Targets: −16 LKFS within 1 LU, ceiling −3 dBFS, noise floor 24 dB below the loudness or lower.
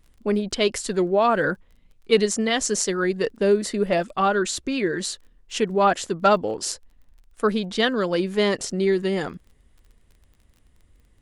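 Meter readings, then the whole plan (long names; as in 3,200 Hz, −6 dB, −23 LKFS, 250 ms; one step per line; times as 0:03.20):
crackle rate 23 per second; integrated loudness −23.0 LKFS; sample peak −5.0 dBFS; target loudness −16.0 LKFS
→ click removal
level +7 dB
brickwall limiter −3 dBFS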